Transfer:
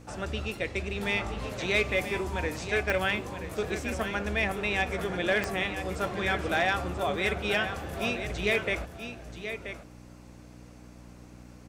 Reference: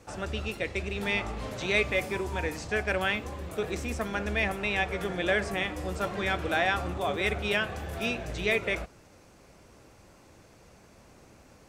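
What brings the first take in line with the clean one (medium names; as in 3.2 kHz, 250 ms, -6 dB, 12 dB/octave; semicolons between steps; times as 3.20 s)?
clip repair -17 dBFS; de-click; de-hum 60.5 Hz, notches 5; inverse comb 981 ms -9.5 dB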